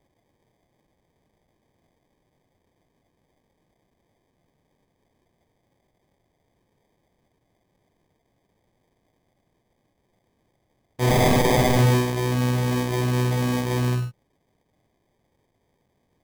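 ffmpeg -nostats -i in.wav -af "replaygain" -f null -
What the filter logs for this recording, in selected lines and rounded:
track_gain = +5.3 dB
track_peak = 0.201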